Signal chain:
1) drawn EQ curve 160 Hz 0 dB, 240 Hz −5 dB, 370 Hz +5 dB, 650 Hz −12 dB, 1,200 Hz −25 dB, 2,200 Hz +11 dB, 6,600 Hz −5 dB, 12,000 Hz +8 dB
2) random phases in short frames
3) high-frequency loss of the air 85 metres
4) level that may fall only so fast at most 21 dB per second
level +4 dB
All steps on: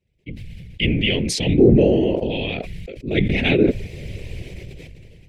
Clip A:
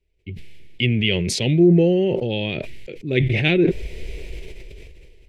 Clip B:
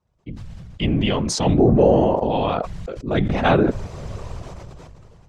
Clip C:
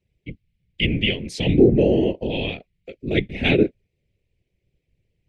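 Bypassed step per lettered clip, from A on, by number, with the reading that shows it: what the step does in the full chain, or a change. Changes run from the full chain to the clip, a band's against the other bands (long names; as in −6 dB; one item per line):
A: 2, 1 kHz band −2.0 dB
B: 1, 1 kHz band +14.5 dB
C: 4, change in momentary loudness spread −11 LU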